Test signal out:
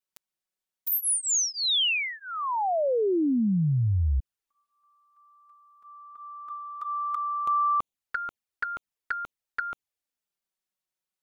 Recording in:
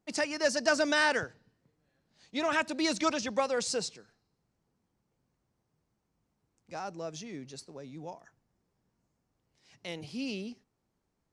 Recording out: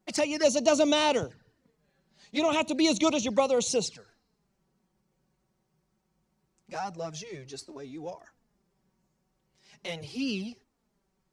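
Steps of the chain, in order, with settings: touch-sensitive flanger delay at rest 5.4 ms, full sweep at -29 dBFS; trim +7 dB

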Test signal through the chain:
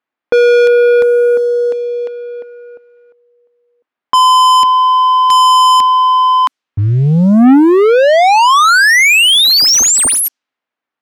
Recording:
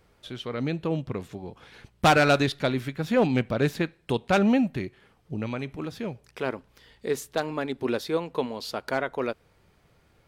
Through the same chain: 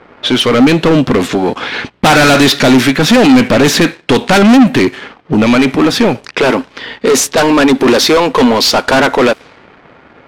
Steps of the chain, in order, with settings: dynamic bell 5.9 kHz, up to +7 dB, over -49 dBFS, Q 1.9; overdrive pedal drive 31 dB, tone 5.7 kHz, clips at -8 dBFS; peaking EQ 260 Hz +9.5 dB 0.51 oct; waveshaping leveller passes 2; level-controlled noise filter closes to 1.8 kHz, open at -9 dBFS; trim +1 dB

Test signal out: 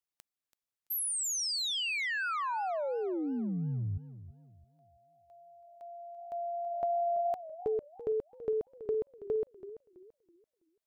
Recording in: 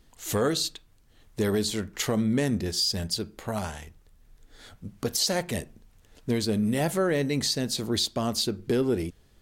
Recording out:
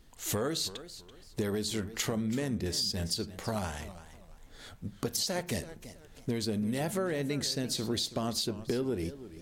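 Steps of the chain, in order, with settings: compression, threshold -29 dBFS; modulated delay 332 ms, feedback 31%, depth 146 cents, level -14.5 dB

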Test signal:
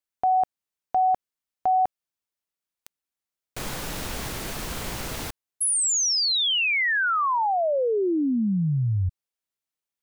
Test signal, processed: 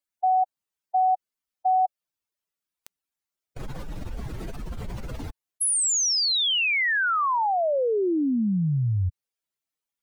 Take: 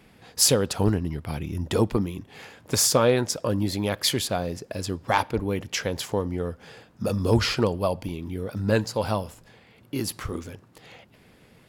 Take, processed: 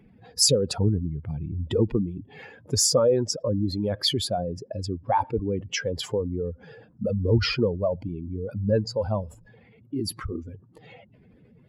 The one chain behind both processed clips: spectral contrast enhancement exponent 2.1

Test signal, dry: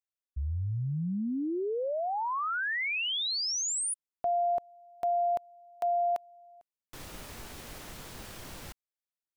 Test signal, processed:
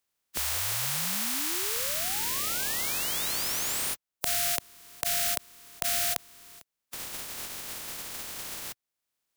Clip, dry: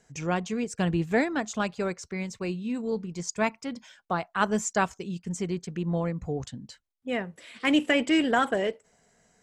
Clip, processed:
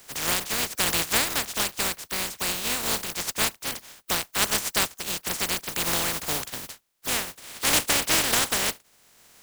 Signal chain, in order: spectral contrast reduction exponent 0.14; three bands compressed up and down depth 40%; trim +2 dB

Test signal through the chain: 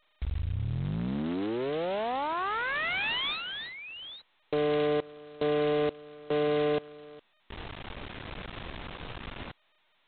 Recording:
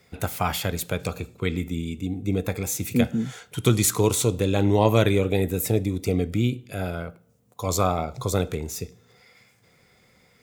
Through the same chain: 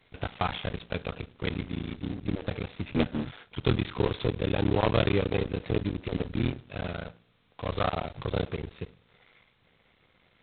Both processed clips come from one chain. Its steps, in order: cycle switcher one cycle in 3, muted; trim -4 dB; G.726 16 kbps 8 kHz

